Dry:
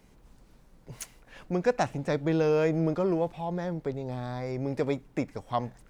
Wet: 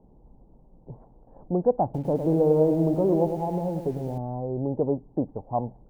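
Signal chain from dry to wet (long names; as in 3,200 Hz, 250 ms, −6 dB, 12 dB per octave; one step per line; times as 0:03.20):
elliptic low-pass filter 870 Hz, stop band 70 dB
0:01.84–0:04.18: feedback echo at a low word length 104 ms, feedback 55%, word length 9 bits, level −7.5 dB
level +4 dB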